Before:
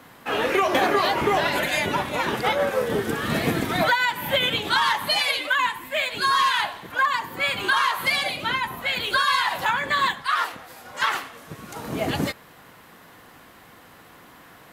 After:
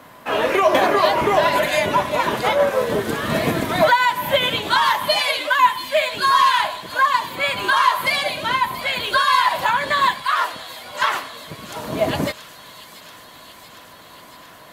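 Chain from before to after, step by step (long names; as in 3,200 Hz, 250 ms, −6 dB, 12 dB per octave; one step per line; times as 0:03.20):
hollow resonant body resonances 620/1,000 Hz, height 10 dB, ringing for 45 ms
on a send: delay with a high-pass on its return 682 ms, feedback 74%, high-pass 3,900 Hz, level −9.5 dB
on the sum: level +2 dB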